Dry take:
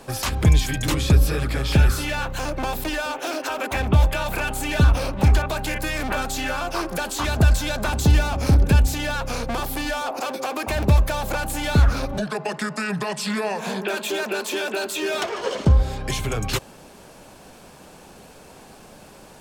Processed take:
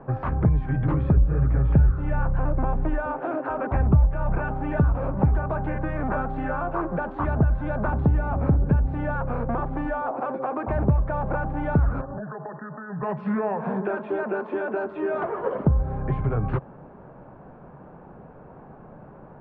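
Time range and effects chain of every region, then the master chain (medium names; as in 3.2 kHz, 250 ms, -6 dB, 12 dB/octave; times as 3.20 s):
1.17–4.38 s: bass shelf 110 Hz +11.5 dB + band-stop 5.2 kHz, Q 16
12.01–13.03 s: tilt EQ +2 dB/octave + compression 5:1, threshold -30 dBFS + brick-wall FIR band-stop 1.9–5.4 kHz
whole clip: low-pass 1.4 kHz 24 dB/octave; peaking EQ 140 Hz +7.5 dB 0.63 oct; compression 2.5:1, threshold -19 dBFS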